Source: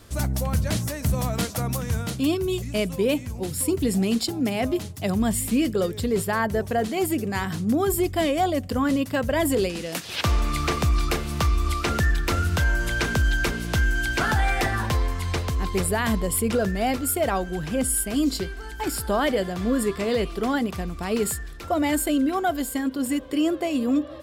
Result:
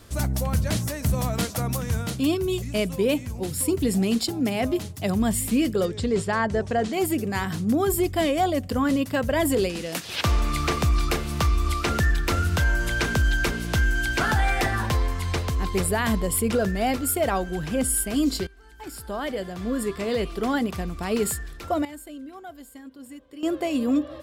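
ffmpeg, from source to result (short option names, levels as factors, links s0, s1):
-filter_complex "[0:a]asettb=1/sr,asplit=3[s0][s1][s2];[s0]atrim=end=5.854[s3];[s1]atrim=start=5.85:end=6.93,asetpts=PTS-STARTPTS,afade=t=in:d=0.004:c=qsin,afade=t=out:st=1.076:d=0.004:c=qsin,lowpass=f=8100:w=0.5412,lowpass=f=8100:w=1.3066[s4];[s2]atrim=start=6.926[s5];[s3][s4]acrossfade=d=0.004:c1=hsin:c2=qsin[s6];[s6][s5]acrossfade=d=0.004:c1=qsin:c2=hsin,asplit=4[s7][s8][s9][s10];[s7]atrim=end=18.47,asetpts=PTS-STARTPTS,afade=t=out:st=18.466:d=0.004:c=hsin:silence=0.11885[s11];[s8]atrim=start=18.47:end=21.85,asetpts=PTS-STARTPTS,afade=t=in:d=2.14:silence=0.11885,afade=t=out:st=2.89:d=0.49:c=log:silence=0.141254[s12];[s9]atrim=start=21.85:end=23.43,asetpts=PTS-STARTPTS,volume=0.141[s13];[s10]atrim=start=23.43,asetpts=PTS-STARTPTS,afade=t=in:d=0.49:c=log:silence=0.141254[s14];[s11][s12][s13][s14]concat=n=4:v=0:a=1"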